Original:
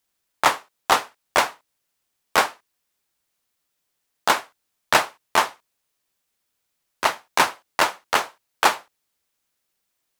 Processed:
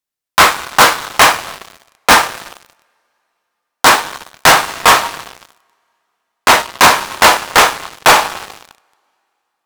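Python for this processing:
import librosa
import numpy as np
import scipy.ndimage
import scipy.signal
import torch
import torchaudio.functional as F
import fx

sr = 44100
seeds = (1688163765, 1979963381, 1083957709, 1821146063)

p1 = fx.speed_glide(x, sr, from_pct=115, to_pct=96)
p2 = fx.rev_double_slope(p1, sr, seeds[0], early_s=0.3, late_s=3.2, knee_db=-18, drr_db=9.5)
p3 = (np.mod(10.0 ** (10.0 / 20.0) * p2 + 1.0, 2.0) - 1.0) / 10.0 ** (10.0 / 20.0)
p4 = p2 + (p3 * librosa.db_to_amplitude(-9.0))
p5 = fx.leveller(p4, sr, passes=5)
y = p5 * librosa.db_to_amplitude(-1.0)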